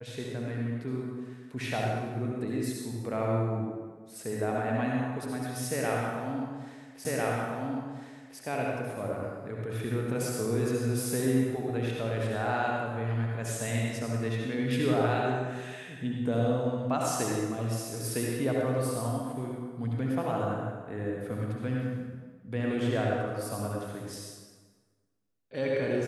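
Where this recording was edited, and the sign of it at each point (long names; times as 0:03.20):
0:07.05: the same again, the last 1.35 s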